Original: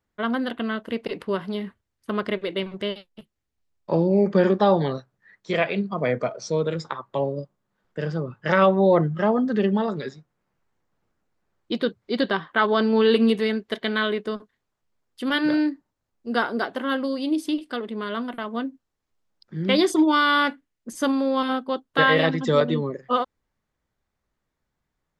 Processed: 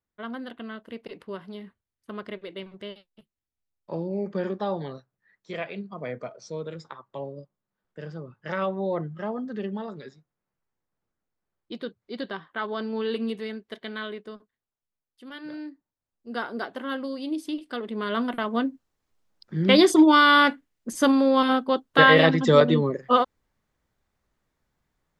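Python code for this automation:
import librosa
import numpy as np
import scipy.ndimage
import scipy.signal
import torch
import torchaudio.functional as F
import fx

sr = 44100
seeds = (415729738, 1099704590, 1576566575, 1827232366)

y = fx.gain(x, sr, db=fx.line((14.05, -10.5), (15.34, -18.0), (16.6, -6.0), (17.52, -6.0), (18.23, 3.0)))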